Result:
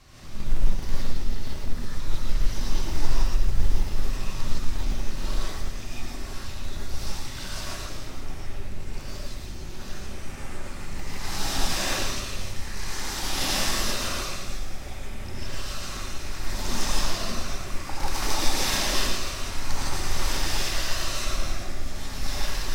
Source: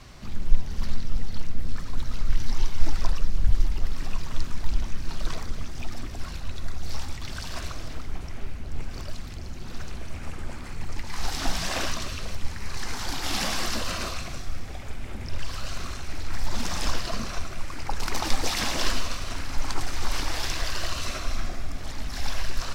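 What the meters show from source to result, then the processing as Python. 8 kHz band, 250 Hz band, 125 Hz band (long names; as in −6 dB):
+4.0 dB, +1.5 dB, +0.5 dB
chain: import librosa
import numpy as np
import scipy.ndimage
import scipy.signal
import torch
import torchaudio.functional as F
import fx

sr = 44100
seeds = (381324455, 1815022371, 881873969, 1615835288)

p1 = fx.high_shelf(x, sr, hz=6200.0, db=6.0)
p2 = fx.schmitt(p1, sr, flips_db=-16.0)
p3 = p1 + (p2 * librosa.db_to_amplitude(-6.5))
p4 = p3 + 10.0 ** (-8.0 / 20.0) * np.pad(p3, (int(113 * sr / 1000.0), 0))[:len(p3)]
p5 = fx.rev_gated(p4, sr, seeds[0], gate_ms=190, shape='rising', drr_db=-7.5)
y = p5 * librosa.db_to_amplitude(-8.0)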